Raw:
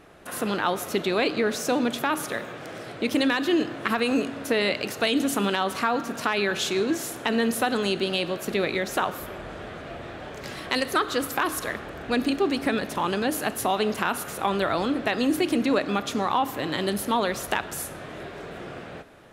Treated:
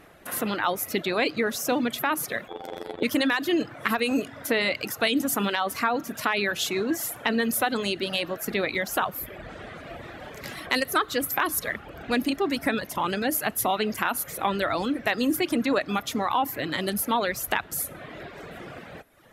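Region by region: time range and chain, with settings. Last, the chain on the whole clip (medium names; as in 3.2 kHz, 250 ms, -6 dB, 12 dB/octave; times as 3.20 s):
2.48–3.03 s: robot voice 86.4 Hz + small resonant body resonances 440/800/3400 Hz, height 17 dB, ringing for 25 ms + AM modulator 110 Hz, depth 55%
whole clip: reverb removal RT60 0.88 s; graphic EQ with 31 bands 400 Hz -3 dB, 2 kHz +4 dB, 12.5 kHz +11 dB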